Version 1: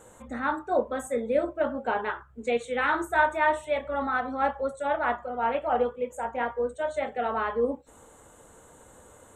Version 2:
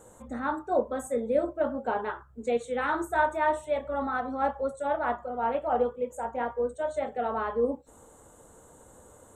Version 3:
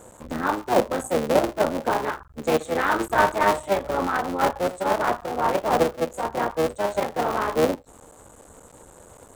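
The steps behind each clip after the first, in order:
bell 2400 Hz -8.5 dB 1.5 oct
cycle switcher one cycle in 3, muted; gain +7.5 dB

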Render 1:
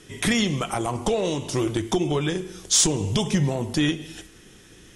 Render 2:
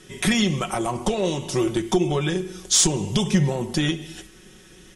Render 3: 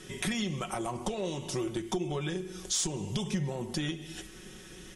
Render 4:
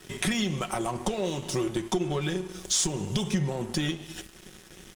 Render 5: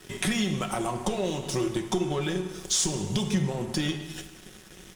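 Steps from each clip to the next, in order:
comb 5.4 ms, depth 52%
compressor 2:1, threshold -39 dBFS, peak gain reduction 13.5 dB
crossover distortion -49.5 dBFS; gain +5.5 dB
plate-style reverb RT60 1.2 s, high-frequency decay 0.85×, DRR 8 dB

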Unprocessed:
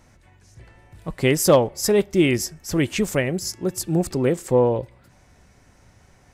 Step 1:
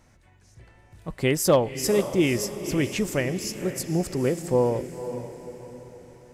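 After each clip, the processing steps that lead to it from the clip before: diffused feedback echo 0.506 s, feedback 45%, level -11 dB; gain -4 dB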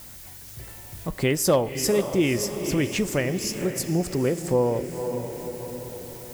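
added noise blue -52 dBFS; compressor 1.5:1, threshold -41 dBFS, peak gain reduction 9.5 dB; reverb RT60 0.50 s, pre-delay 18 ms, DRR 18.5 dB; gain +8 dB

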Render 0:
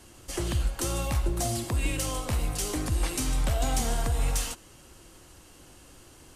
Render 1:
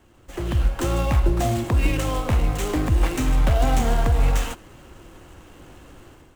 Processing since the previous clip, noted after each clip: median filter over 9 samples; AGC gain up to 11 dB; gain -2.5 dB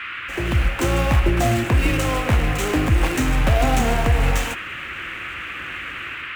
HPF 52 Hz; band noise 1200–2800 Hz -35 dBFS; gain +3.5 dB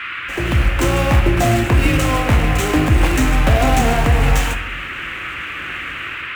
shoebox room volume 200 m³, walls mixed, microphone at 0.37 m; gain +3.5 dB

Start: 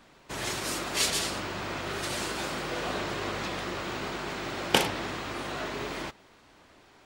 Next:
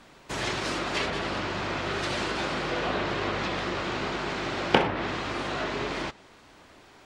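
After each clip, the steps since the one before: treble ducked by the level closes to 2000 Hz, closed at -25 dBFS; gain +4 dB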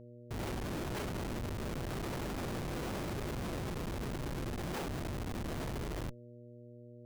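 Schmitt trigger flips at -26 dBFS; buzz 120 Hz, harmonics 5, -45 dBFS -3 dB/oct; gain -7.5 dB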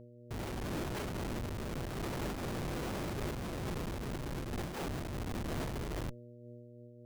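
noise-modulated level, depth 60%; gain +3 dB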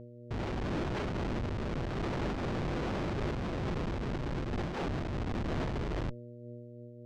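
in parallel at -7 dB: hard clip -40 dBFS, distortion -12 dB; on the sum: air absorption 140 m; gain +2 dB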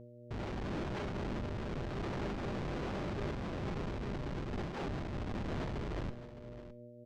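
resonator 200 Hz, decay 0.43 s, harmonics all, mix 50%; echo 0.612 s -14 dB; gain +1 dB

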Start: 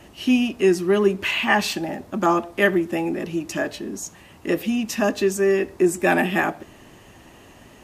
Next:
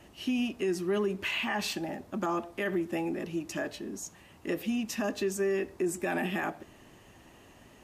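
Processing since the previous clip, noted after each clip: limiter -14 dBFS, peak gain reduction 9.5 dB; gain -8 dB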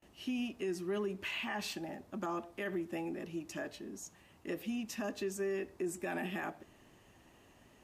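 gate with hold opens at -46 dBFS; gain -7 dB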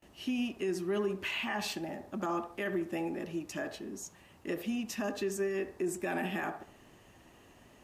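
band-limited delay 71 ms, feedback 32%, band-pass 780 Hz, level -8 dB; gain +3.5 dB

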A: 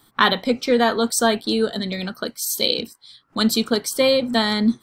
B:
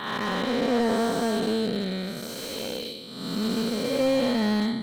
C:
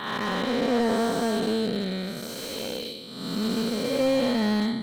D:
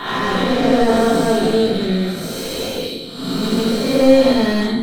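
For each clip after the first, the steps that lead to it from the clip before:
time blur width 0.426 s; transient shaper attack +4 dB, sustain -5 dB; slew limiter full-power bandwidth 82 Hz
nothing audible
shoebox room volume 160 m³, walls furnished, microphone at 3.3 m; gain +2 dB

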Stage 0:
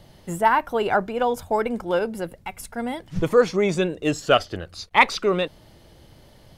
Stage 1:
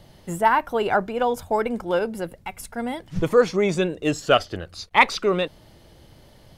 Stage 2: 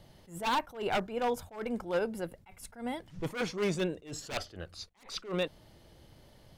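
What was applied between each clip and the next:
nothing audible
wavefolder -15.5 dBFS; attack slew limiter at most 160 dB/s; gain -7 dB

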